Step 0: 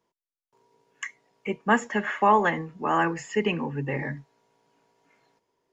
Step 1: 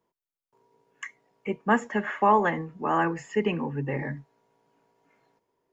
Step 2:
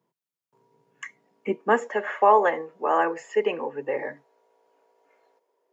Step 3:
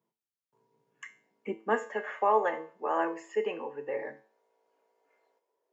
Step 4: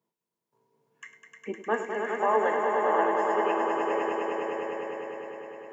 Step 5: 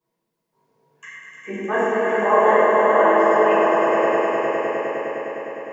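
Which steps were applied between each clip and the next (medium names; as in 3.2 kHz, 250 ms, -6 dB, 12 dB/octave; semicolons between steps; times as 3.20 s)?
peaking EQ 5.3 kHz -7 dB 2.6 oct
high-pass sweep 140 Hz -> 500 Hz, 1.04–1.92 s
feedback comb 110 Hz, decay 0.42 s, harmonics all, mix 70%
echo with a slow build-up 102 ms, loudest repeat 5, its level -6 dB
reverberation RT60 2.0 s, pre-delay 3 ms, DRR -12 dB; trim -2.5 dB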